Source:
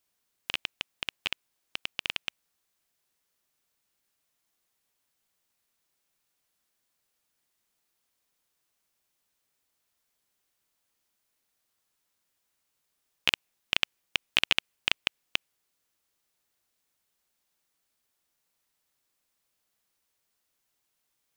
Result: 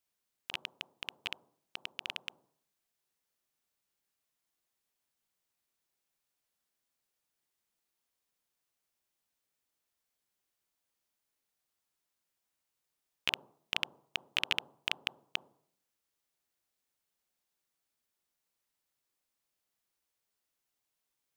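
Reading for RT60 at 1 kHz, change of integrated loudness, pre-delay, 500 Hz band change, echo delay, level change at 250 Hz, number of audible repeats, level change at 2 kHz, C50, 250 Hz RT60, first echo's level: 0.65 s, -7.0 dB, 14 ms, -6.0 dB, no echo, -6.5 dB, no echo, -7.0 dB, 16.0 dB, 0.75 s, no echo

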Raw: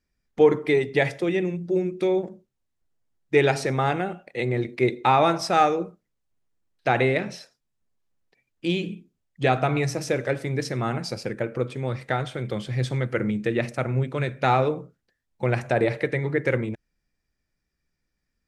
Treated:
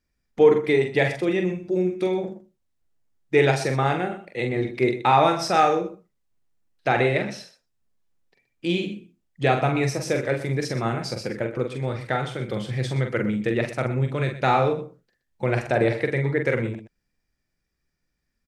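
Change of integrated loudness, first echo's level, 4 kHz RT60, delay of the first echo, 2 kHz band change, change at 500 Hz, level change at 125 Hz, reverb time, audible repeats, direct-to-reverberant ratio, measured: +1.0 dB, -5.5 dB, no reverb, 44 ms, +1.0 dB, +1.0 dB, +1.0 dB, no reverb, 2, no reverb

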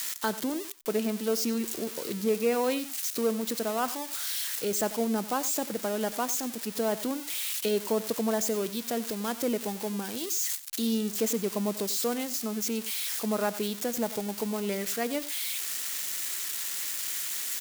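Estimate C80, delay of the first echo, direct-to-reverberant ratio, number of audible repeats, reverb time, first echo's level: no reverb, 93 ms, no reverb, 1, no reverb, -16.5 dB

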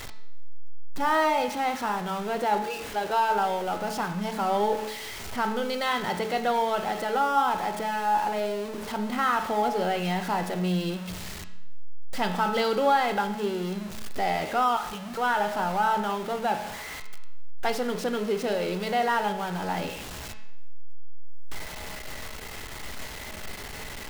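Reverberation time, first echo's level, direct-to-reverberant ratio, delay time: 0.80 s, no echo, 6.0 dB, no echo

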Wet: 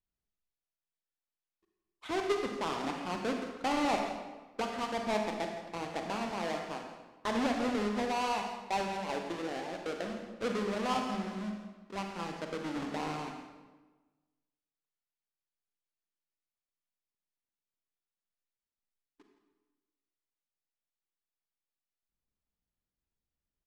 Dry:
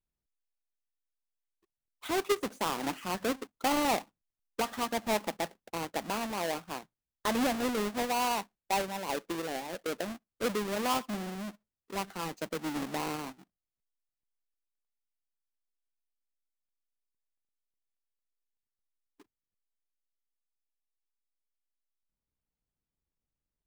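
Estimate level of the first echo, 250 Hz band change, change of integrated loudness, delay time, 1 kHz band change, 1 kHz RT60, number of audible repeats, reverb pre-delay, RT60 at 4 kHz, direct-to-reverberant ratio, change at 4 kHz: -14.5 dB, -0.5 dB, -2.0 dB, 166 ms, -1.5 dB, 1.2 s, 1, 34 ms, 0.90 s, 2.5 dB, -3.5 dB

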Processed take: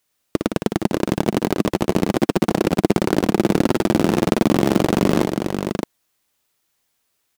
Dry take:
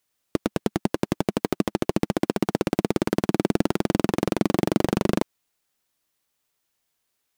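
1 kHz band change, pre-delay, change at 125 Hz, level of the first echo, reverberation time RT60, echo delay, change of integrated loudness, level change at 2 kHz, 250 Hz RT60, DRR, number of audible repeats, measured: +6.0 dB, no reverb, +6.0 dB, -7.0 dB, no reverb, 58 ms, +5.5 dB, +6.0 dB, no reverb, no reverb, 3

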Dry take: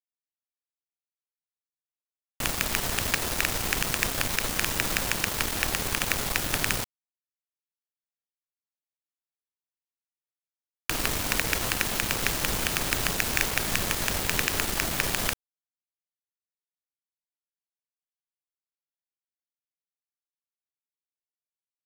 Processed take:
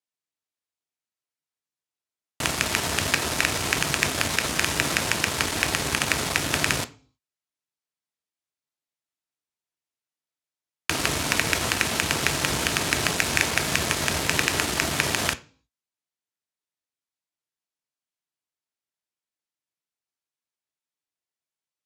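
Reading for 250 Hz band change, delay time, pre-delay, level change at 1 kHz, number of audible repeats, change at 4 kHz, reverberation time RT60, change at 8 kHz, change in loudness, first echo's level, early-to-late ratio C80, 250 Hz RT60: +4.5 dB, no echo, 3 ms, +4.5 dB, no echo, +4.5 dB, 0.40 s, +3.0 dB, +3.0 dB, no echo, 24.5 dB, 0.50 s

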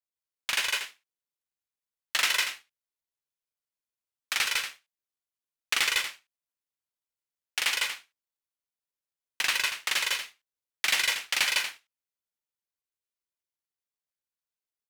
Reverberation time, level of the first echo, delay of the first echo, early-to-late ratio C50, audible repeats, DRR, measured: no reverb, -13.5 dB, 58 ms, no reverb, 3, no reverb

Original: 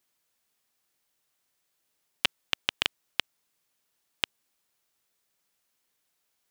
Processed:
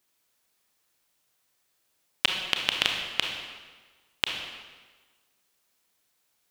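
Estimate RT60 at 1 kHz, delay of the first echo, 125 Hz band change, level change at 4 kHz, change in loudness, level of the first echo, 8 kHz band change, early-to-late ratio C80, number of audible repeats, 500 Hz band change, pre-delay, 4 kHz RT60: 1.4 s, no echo, +4.0 dB, +4.0 dB, +3.0 dB, no echo, +4.0 dB, 5.5 dB, no echo, +4.0 dB, 27 ms, 1.2 s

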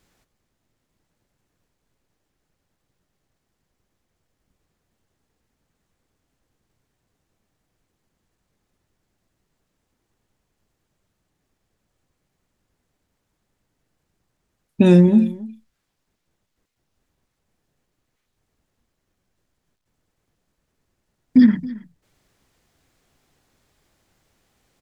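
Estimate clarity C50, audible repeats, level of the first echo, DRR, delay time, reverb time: no reverb, 1, -19.0 dB, no reverb, 273 ms, no reverb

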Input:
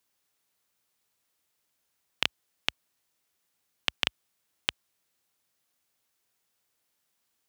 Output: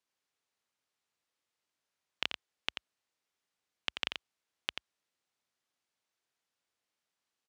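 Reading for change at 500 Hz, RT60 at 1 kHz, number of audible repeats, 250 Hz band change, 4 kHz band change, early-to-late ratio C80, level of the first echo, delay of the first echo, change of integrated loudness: -6.0 dB, no reverb, 1, -7.5 dB, -6.5 dB, no reverb, -7.0 dB, 87 ms, -7.0 dB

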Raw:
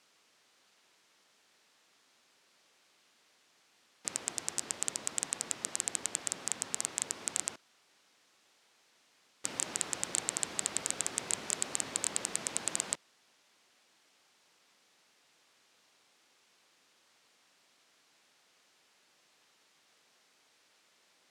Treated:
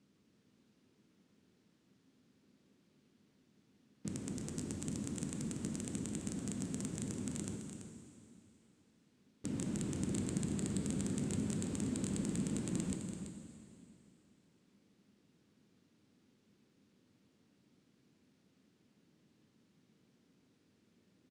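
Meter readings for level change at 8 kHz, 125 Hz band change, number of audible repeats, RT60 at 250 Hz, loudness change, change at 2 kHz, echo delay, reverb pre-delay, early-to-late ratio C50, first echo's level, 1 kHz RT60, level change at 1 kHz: -13.0 dB, +16.5 dB, 1, 2.8 s, -5.5 dB, -11.5 dB, 334 ms, 7 ms, 4.5 dB, -9.0 dB, 2.8 s, -10.5 dB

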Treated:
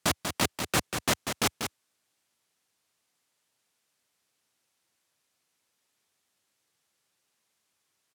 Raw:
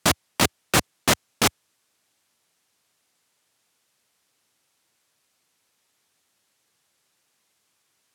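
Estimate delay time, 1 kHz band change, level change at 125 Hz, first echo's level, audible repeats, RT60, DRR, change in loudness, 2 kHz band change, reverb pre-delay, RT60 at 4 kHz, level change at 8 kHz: 191 ms, -6.0 dB, -6.0 dB, -7.0 dB, 1, no reverb, no reverb, -6.5 dB, -6.0 dB, no reverb, no reverb, -6.0 dB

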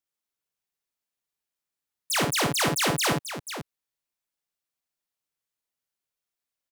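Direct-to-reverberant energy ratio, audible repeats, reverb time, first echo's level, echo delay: no reverb, 2, no reverb, -4.0 dB, 54 ms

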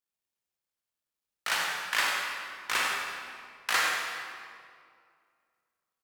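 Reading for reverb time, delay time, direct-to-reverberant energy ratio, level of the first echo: 2.2 s, 97 ms, -3.5 dB, -7.0 dB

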